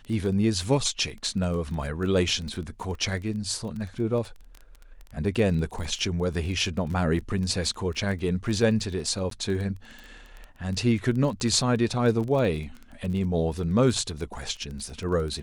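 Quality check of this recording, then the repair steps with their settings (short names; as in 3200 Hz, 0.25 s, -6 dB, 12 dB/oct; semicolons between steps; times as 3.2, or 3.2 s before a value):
crackle 20/s -32 dBFS
9.3–9.31 gap 13 ms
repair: de-click; interpolate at 9.3, 13 ms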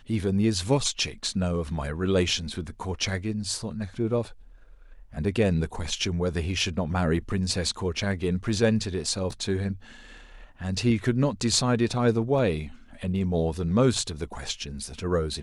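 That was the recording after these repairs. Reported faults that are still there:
none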